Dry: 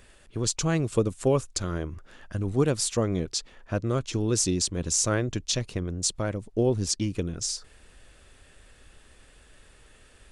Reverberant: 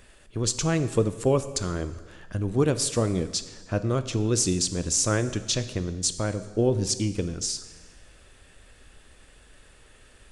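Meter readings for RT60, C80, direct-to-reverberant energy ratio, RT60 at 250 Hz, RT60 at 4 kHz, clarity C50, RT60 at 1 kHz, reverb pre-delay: 1.3 s, 14.5 dB, 11.0 dB, 1.4 s, 1.2 s, 13.0 dB, 1.3 s, 6 ms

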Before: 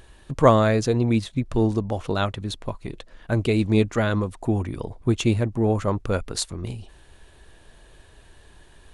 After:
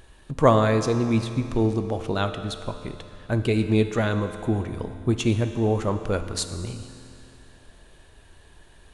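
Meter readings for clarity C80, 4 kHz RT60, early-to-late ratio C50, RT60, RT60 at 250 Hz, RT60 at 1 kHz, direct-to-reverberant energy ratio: 10.0 dB, 2.6 s, 9.5 dB, 2.7 s, 2.7 s, 2.7 s, 8.5 dB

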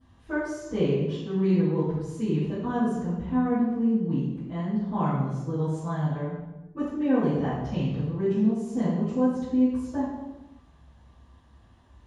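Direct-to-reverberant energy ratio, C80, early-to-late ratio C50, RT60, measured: −20.5 dB, 2.5 dB, −1.0 dB, 1.1 s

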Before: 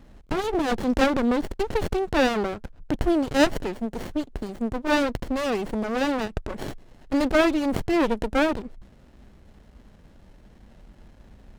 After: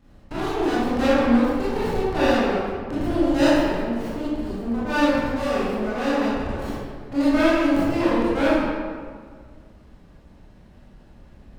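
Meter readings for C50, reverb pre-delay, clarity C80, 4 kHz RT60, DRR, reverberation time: −4.5 dB, 22 ms, −1.5 dB, 1.1 s, −10.5 dB, 1.8 s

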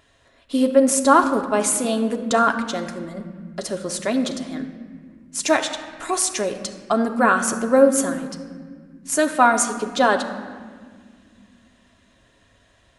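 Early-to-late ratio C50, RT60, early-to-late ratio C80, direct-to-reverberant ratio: 9.5 dB, 1.9 s, 10.5 dB, 4.0 dB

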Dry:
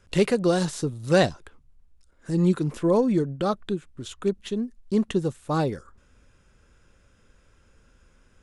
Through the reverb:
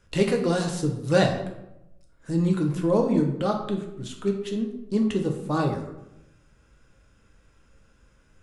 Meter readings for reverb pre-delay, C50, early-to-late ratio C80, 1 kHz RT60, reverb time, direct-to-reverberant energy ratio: 5 ms, 7.0 dB, 10.0 dB, 0.80 s, 0.90 s, 1.5 dB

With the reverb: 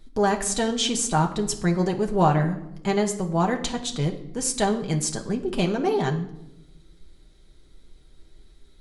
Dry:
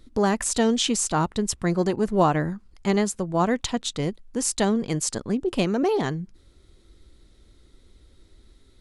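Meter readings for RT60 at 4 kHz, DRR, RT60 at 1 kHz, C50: 0.65 s, 1.0 dB, 0.75 s, 11.5 dB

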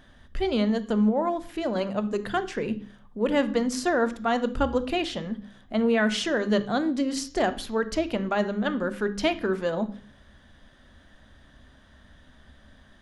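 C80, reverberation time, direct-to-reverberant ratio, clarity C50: 20.0 dB, 0.45 s, 11.5 dB, 15.5 dB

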